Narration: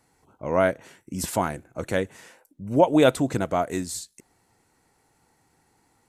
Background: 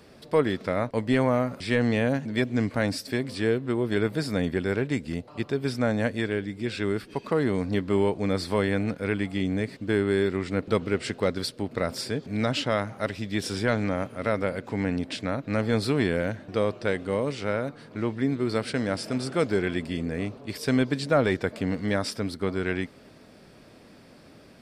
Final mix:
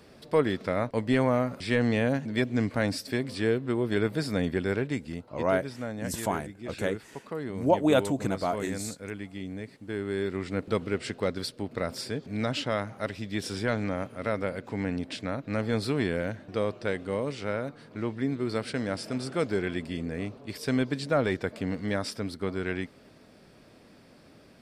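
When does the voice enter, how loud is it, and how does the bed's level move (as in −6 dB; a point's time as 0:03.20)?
4.90 s, −5.0 dB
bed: 0:04.71 −1.5 dB
0:05.71 −10.5 dB
0:09.86 −10.5 dB
0:10.43 −3.5 dB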